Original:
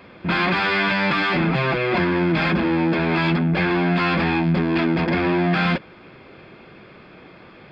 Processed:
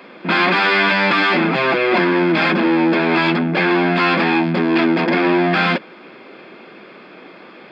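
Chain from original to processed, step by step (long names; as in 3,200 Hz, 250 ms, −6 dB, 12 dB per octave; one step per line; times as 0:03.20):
high-pass filter 210 Hz 24 dB per octave
level +5.5 dB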